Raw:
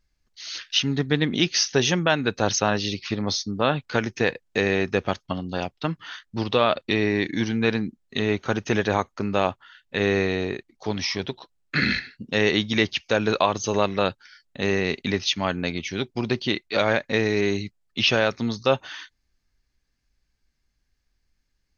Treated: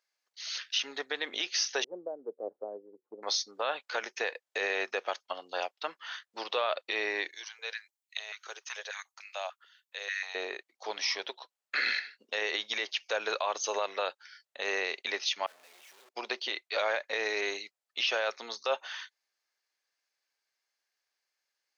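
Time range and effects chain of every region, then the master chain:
0:01.84–0:03.23: inverse Chebyshev low-pass filter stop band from 2,800 Hz, stop band 80 dB + multiband upward and downward expander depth 100%
0:07.29–0:10.35: first difference + high-pass on a step sequencer 6.8 Hz 390–2,200 Hz
0:15.46–0:16.09: sign of each sample alone + downward expander −16 dBFS + low-shelf EQ 220 Hz +9.5 dB
whole clip: high-pass filter 520 Hz 24 dB per octave; brickwall limiter −16 dBFS; level −3 dB

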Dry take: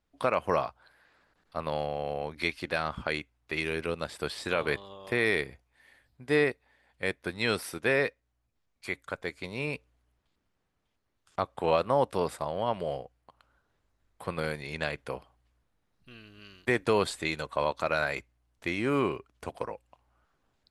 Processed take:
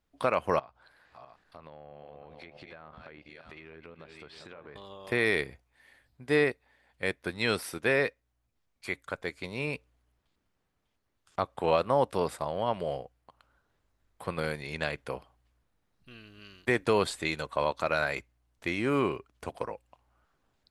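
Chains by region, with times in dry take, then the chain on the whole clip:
0:00.59–0:04.76: feedback delay that plays each chunk backwards 331 ms, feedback 42%, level −10 dB + treble cut that deepens with the level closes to 1,600 Hz, closed at −25.5 dBFS + downward compressor 5 to 1, threshold −46 dBFS
whole clip: no processing

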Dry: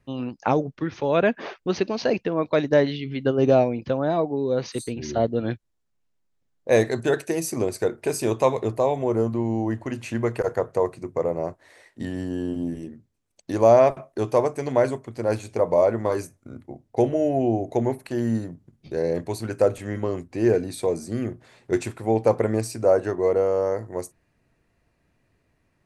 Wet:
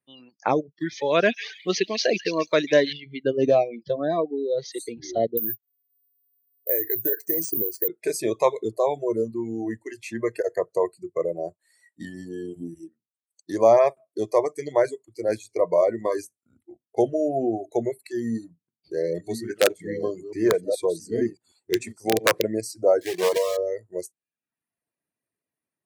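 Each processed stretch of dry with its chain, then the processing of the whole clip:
0:00.80–0:02.93: high-shelf EQ 2,700 Hz +11.5 dB + echo through a band-pass that steps 140 ms, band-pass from 2,700 Hz, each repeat 0.7 octaves, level −5 dB
0:05.37–0:07.88: parametric band 3,300 Hz −12 dB 0.78 octaves + downward compressor 8 to 1, threshold −23 dBFS + bad sample-rate conversion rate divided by 3×, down filtered, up zero stuff
0:18.17–0:22.42: delay that plays each chunk backwards 670 ms, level −6 dB + high-shelf EQ 9,100 Hz −2 dB + wrap-around overflow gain 9 dB
0:23.01–0:23.58: one scale factor per block 3 bits + highs frequency-modulated by the lows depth 0.3 ms
whole clip: noise reduction from a noise print of the clip's start 19 dB; high-pass filter 190 Hz 12 dB per octave; reverb reduction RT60 0.62 s

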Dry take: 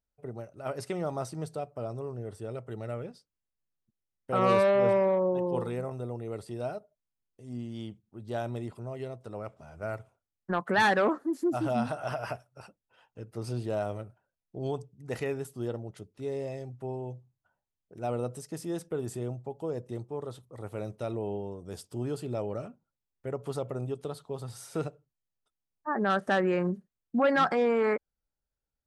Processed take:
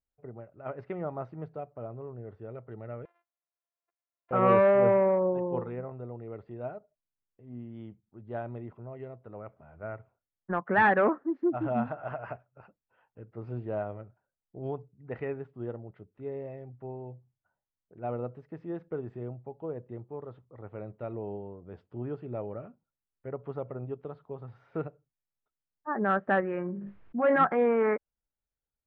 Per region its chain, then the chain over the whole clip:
0:03.05–0:04.31: samples sorted by size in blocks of 128 samples + high-pass filter 530 Hz 24 dB per octave + downward compressor 4 to 1, threshold −58 dBFS
0:26.40–0:27.40: tuned comb filter 50 Hz, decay 0.2 s, mix 70% + level that may fall only so fast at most 22 dB per second
whole clip: low-pass filter 2,200 Hz 24 dB per octave; expander for the loud parts 1.5 to 1, over −35 dBFS; level +2.5 dB

